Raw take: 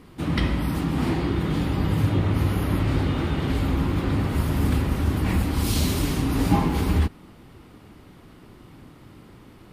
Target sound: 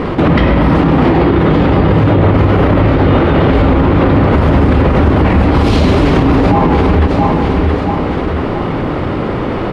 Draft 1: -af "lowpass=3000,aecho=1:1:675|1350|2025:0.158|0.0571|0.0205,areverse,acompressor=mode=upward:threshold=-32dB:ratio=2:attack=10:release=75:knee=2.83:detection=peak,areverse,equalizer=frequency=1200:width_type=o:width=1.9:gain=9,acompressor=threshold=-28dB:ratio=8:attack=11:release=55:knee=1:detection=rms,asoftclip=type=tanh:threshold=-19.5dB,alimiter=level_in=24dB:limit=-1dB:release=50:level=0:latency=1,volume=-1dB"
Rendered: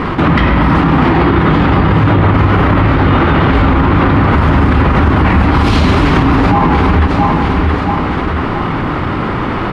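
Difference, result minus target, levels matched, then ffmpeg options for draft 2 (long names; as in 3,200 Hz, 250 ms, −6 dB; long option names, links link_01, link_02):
500 Hz band −4.0 dB; 1,000 Hz band +2.5 dB
-af "lowpass=3000,equalizer=frequency=530:width_type=o:width=1.1:gain=8.5,aecho=1:1:675|1350|2025:0.158|0.0571|0.0205,areverse,acompressor=mode=upward:threshold=-32dB:ratio=2:attack=10:release=75:knee=2.83:detection=peak,areverse,equalizer=frequency=1200:width_type=o:width=1.9:gain=3,acompressor=threshold=-28dB:ratio=8:attack=11:release=55:knee=1:detection=rms,asoftclip=type=tanh:threshold=-19.5dB,alimiter=level_in=24dB:limit=-1dB:release=50:level=0:latency=1,volume=-1dB"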